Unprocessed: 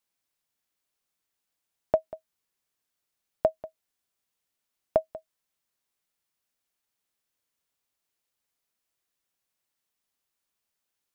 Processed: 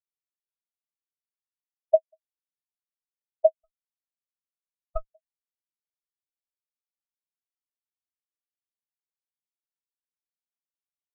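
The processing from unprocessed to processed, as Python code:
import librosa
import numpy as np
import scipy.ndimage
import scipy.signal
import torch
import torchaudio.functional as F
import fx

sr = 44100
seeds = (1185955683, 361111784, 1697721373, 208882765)

y = fx.lower_of_two(x, sr, delay_ms=2.6, at=(3.63, 5.07), fade=0.02)
y = fx.spectral_expand(y, sr, expansion=2.5)
y = y * 10.0 ** (2.5 / 20.0)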